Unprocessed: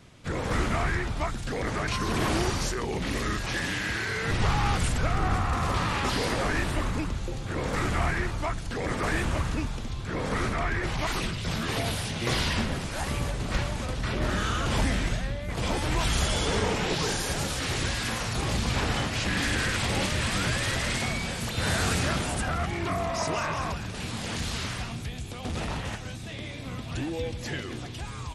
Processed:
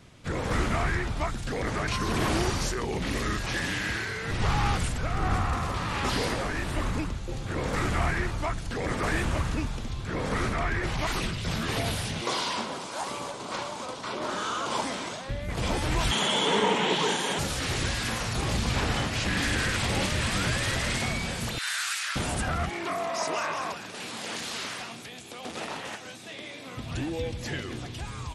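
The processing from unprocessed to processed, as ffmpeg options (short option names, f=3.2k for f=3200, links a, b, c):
-filter_complex "[0:a]asettb=1/sr,asplit=3[a][b][c];[a]atrim=end=3.854[d];[b]atrim=start=3.85:end=7.29,asetpts=PTS-STARTPTS,afade=t=in:d=0.004:c=qsin,afade=t=out:st=3.436:d=0.004:c=qsin,tremolo=f=1.3:d=0.37[e];[c]atrim=start=7.286[f];[d][e]acrossfade=d=0.004:c1=hsin:c2=qsin[g];[g][f]acrossfade=d=0.004:c1=qsin:c2=hsin,asettb=1/sr,asplit=3[h][i][j];[h]atrim=end=12.214[k];[i]atrim=start=12.21:end=15.29,asetpts=PTS-STARTPTS,afade=t=in:d=0.004:c=qsin,afade=t=out:st=3.076:d=0.004:c=qsin,highpass=330,equalizer=f=1k:t=q:w=4:g=7,equalizer=f=1.8k:t=q:w=4:g=-8,equalizer=f=2.6k:t=q:w=4:g=-4,lowpass=f=9.9k:w=0.5412,lowpass=f=9.9k:w=1.3066[l];[j]atrim=start=15.286[m];[k][l]acrossfade=d=0.004:c1=hsin:c2=qsin[n];[n][m]acrossfade=d=0.004:c1=qsin:c2=hsin,asettb=1/sr,asplit=3[o][p][q];[o]atrim=end=16.114[r];[p]atrim=start=16.11:end=17.39,asetpts=PTS-STARTPTS,afade=t=in:d=0.004:c=qsin,afade=t=out:st=1.276:d=0.004:c=qsin,highpass=f=170:w=0.5412,highpass=f=170:w=1.3066,equalizer=f=210:t=q:w=4:g=4,equalizer=f=420:t=q:w=4:g=4,equalizer=f=940:t=q:w=4:g=9,equalizer=f=2k:t=q:w=4:g=3,equalizer=f=3.2k:t=q:w=4:g=9,equalizer=f=5k:t=q:w=4:g=-9,lowpass=f=9.7k:w=0.5412,lowpass=f=9.7k:w=1.3066[s];[q]atrim=start=17.386[t];[r][s]acrossfade=d=0.004:c1=hsin:c2=qsin[u];[u][t]acrossfade=d=0.004:c1=qsin:c2=hsin,asettb=1/sr,asplit=3[v][w][x];[v]atrim=end=21.584[y];[w]atrim=start=21.58:end=22.16,asetpts=PTS-STARTPTS,afade=t=in:d=0.004:c=qsin,afade=t=out:st=0.576:d=0.004:c=qsin,highpass=f=1.3k:w=0.5412,highpass=f=1.3k:w=1.3066[z];[x]atrim=start=22.156[aa];[y][z]acrossfade=d=0.004:c1=hsin:c2=qsin[ab];[ab][aa]acrossfade=d=0.004:c1=qsin:c2=hsin,asettb=1/sr,asplit=3[ac][ad][ae];[ac]atrim=end=22.694[af];[ad]atrim=start=22.69:end=26.77,asetpts=PTS-STARTPTS,afade=t=in:d=0.004:c=qsin,afade=t=out:st=4.076:d=0.004:c=qsin,highpass=310[ag];[ae]atrim=start=26.766[ah];[af][ag]acrossfade=d=0.004:c1=hsin:c2=qsin[ai];[ai][ah]acrossfade=d=0.004:c1=qsin:c2=hsin"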